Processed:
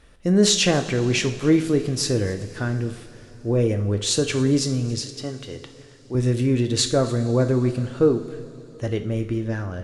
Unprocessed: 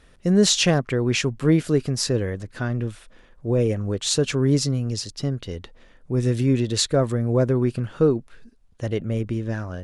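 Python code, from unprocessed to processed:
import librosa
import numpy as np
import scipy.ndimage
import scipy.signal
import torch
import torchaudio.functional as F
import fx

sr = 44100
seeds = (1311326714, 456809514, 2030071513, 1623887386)

y = fx.bass_treble(x, sr, bass_db=-11, treble_db=-2, at=(5.03, 6.15))
y = y + 10.0 ** (-21.5 / 20.0) * np.pad(y, (int(273 * sr / 1000.0), 0))[:len(y)]
y = fx.rev_double_slope(y, sr, seeds[0], early_s=0.51, late_s=4.9, knee_db=-18, drr_db=6.5)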